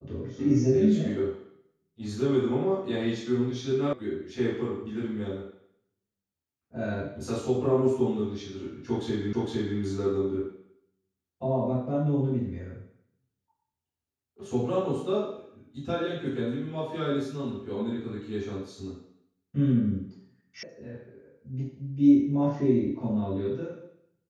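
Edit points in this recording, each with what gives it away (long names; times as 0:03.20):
0:03.93: cut off before it has died away
0:09.33: the same again, the last 0.46 s
0:20.63: cut off before it has died away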